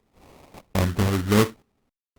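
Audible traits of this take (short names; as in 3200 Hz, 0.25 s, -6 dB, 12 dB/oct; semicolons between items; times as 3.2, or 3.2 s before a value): random-step tremolo 3.7 Hz, depth 100%; aliases and images of a low sample rate 1600 Hz, jitter 20%; Opus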